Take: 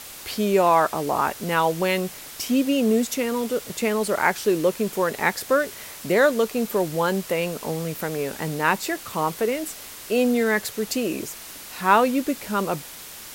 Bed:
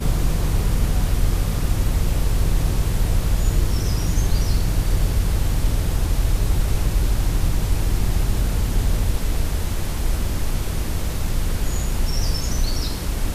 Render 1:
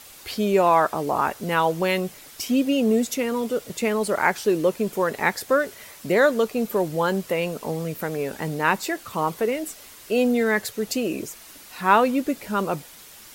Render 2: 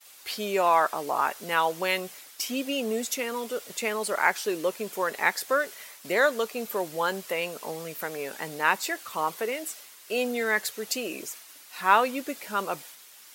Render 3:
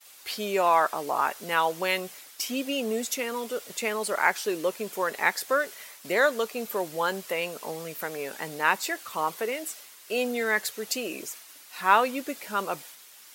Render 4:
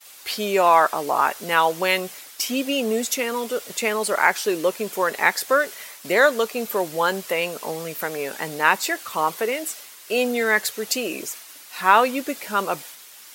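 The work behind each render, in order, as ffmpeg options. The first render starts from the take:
-af "afftdn=nr=7:nf=-40"
-af "agate=range=0.0224:threshold=0.01:ratio=3:detection=peak,highpass=f=930:p=1"
-af anull
-af "volume=2,alimiter=limit=0.794:level=0:latency=1"

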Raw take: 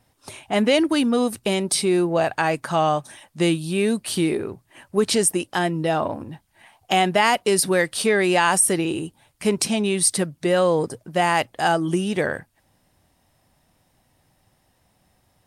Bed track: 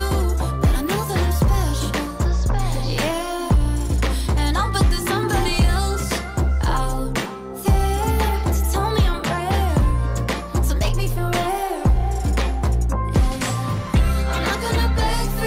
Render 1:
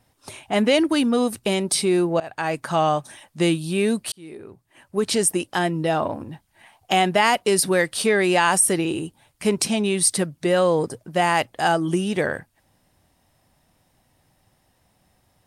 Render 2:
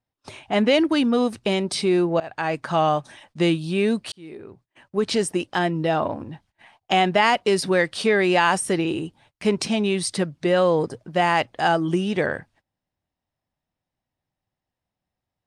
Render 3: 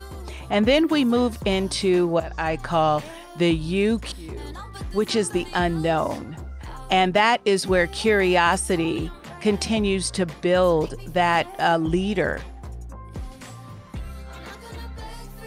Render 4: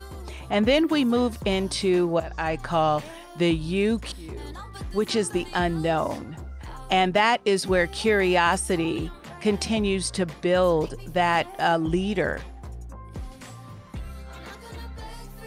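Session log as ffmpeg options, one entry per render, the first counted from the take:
-filter_complex "[0:a]asplit=3[s0][s1][s2];[s0]atrim=end=2.2,asetpts=PTS-STARTPTS,afade=t=out:st=2.196:d=0.004:c=hsin:silence=0.1[s3];[s1]atrim=start=2.2:end=4.12,asetpts=PTS-STARTPTS,afade=t=in:d=0.61:c=qsin:silence=0.1,afade=t=out:st=1.916:d=0.004:c=hsin[s4];[s2]atrim=start=4.12,asetpts=PTS-STARTPTS,afade=t=in:d=1.22[s5];[s3][s4][s5]concat=n=3:v=0:a=1"
-af "agate=range=0.0891:threshold=0.002:ratio=16:detection=peak,lowpass=5300"
-filter_complex "[1:a]volume=0.141[s0];[0:a][s0]amix=inputs=2:normalize=0"
-af "volume=0.794"

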